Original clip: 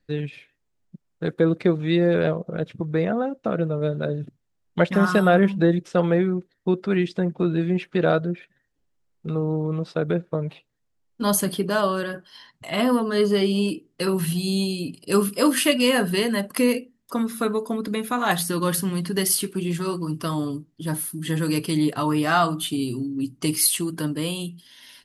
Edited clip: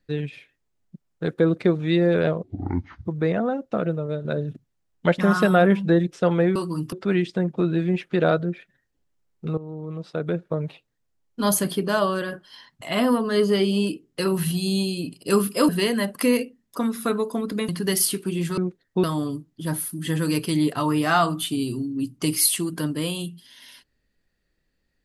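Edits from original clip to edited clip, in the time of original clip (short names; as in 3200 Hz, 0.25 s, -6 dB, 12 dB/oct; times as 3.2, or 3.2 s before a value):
2.43–2.78 speed 56%
3.51–3.97 fade out, to -6 dB
6.28–6.74 swap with 19.87–20.24
9.39–10.43 fade in, from -15 dB
15.5–16.04 cut
18.04–18.98 cut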